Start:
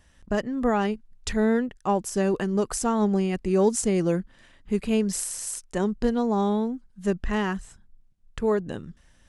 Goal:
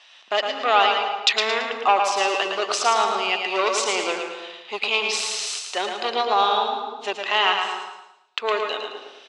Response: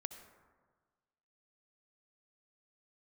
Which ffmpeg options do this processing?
-filter_complex "[0:a]aeval=exprs='0.335*(cos(1*acos(clip(val(0)/0.335,-1,1)))-cos(1*PI/2))+0.0668*(cos(5*acos(clip(val(0)/0.335,-1,1)))-cos(5*PI/2))':c=same,aecho=1:1:111|222|333|444|555:0.531|0.207|0.0807|0.0315|0.0123[a];[1:a]atrim=start_sample=2205,afade=t=out:st=0.31:d=0.01,atrim=end_sample=14112,asetrate=28224,aresample=44100[b];[a][b]afir=irnorm=-1:irlink=0,crystalizer=i=8:c=0,highpass=f=470:w=0.5412,highpass=f=470:w=1.3066,equalizer=f=500:t=q:w=4:g=-6,equalizer=f=750:t=q:w=4:g=5,equalizer=f=1.2k:t=q:w=4:g=4,equalizer=f=1.7k:t=q:w=4:g=-7,equalizer=f=2.6k:t=q:w=4:g=6,equalizer=f=3.8k:t=q:w=4:g=5,lowpass=f=4.1k:w=0.5412,lowpass=f=4.1k:w=1.3066"

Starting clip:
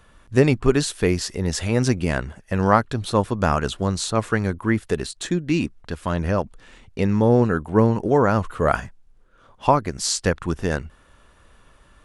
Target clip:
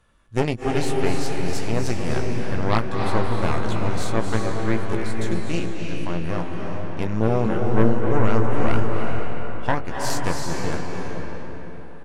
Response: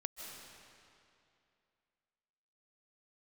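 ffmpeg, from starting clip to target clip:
-filter_complex "[0:a]asplit=2[a][b];[b]adelay=18,volume=-6.5dB[c];[a][c]amix=inputs=2:normalize=0,aeval=exprs='0.891*(cos(1*acos(clip(val(0)/0.891,-1,1)))-cos(1*PI/2))+0.316*(cos(4*acos(clip(val(0)/0.891,-1,1)))-cos(4*PI/2))':c=same[d];[1:a]atrim=start_sample=2205,asetrate=26460,aresample=44100[e];[d][e]afir=irnorm=-1:irlink=0,volume=-8.5dB"

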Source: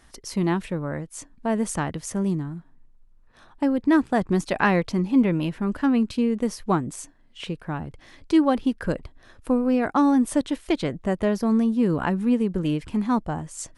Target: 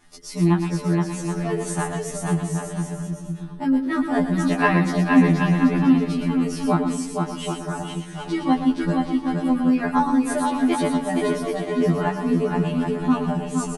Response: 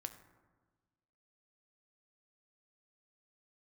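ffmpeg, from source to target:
-filter_complex "[0:a]aecho=1:1:6.8:0.84,aecho=1:1:470|775.5|974.1|1103|1187:0.631|0.398|0.251|0.158|0.1,asplit=2[a][b];[1:a]atrim=start_sample=2205,highshelf=f=9.5k:g=11.5,adelay=117[c];[b][c]afir=irnorm=-1:irlink=0,volume=-5.5dB[d];[a][d]amix=inputs=2:normalize=0,afftfilt=real='re*2*eq(mod(b,4),0)':imag='im*2*eq(mod(b,4),0)':win_size=2048:overlap=0.75"

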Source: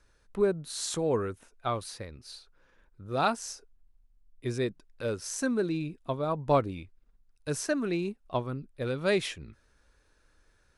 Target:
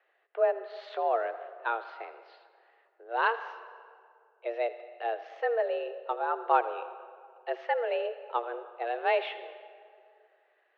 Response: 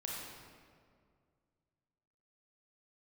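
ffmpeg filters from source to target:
-filter_complex "[0:a]asplit=2[a][b];[1:a]atrim=start_sample=2205,lowshelf=f=130:g=-8.5,adelay=80[c];[b][c]afir=irnorm=-1:irlink=0,volume=-12.5dB[d];[a][d]amix=inputs=2:normalize=0,highpass=f=170:t=q:w=0.5412,highpass=f=170:t=q:w=1.307,lowpass=f=3k:t=q:w=0.5176,lowpass=f=3k:t=q:w=0.7071,lowpass=f=3k:t=q:w=1.932,afreqshift=230"

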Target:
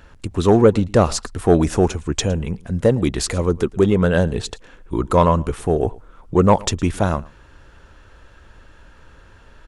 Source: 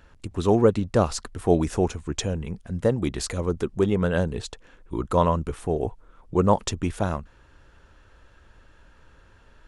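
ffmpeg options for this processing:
-af "acontrast=86,aecho=1:1:112:0.0708"

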